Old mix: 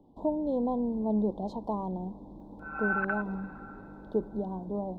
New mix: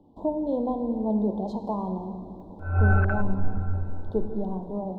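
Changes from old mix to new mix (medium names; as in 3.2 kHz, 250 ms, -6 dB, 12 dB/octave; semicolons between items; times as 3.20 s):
background: remove brick-wall FIR high-pass 780 Hz; reverb: on, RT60 2.2 s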